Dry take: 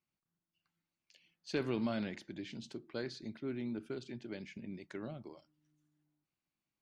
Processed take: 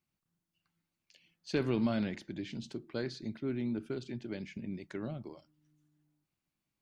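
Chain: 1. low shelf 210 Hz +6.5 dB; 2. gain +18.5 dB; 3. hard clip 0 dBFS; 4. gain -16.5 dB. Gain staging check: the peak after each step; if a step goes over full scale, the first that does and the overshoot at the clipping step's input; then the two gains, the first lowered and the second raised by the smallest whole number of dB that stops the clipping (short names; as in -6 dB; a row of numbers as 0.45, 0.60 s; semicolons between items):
-22.0, -3.5, -3.5, -20.0 dBFS; no overload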